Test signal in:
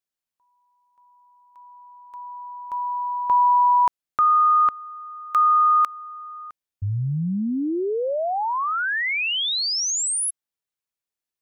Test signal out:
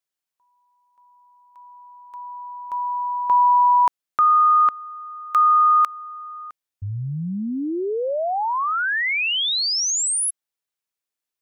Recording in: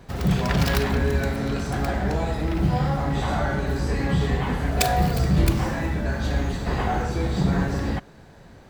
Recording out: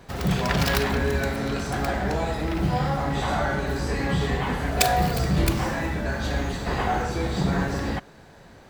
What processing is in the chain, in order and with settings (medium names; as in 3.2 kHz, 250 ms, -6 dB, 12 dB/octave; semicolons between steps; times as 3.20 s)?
bass shelf 300 Hz -6 dB; trim +2 dB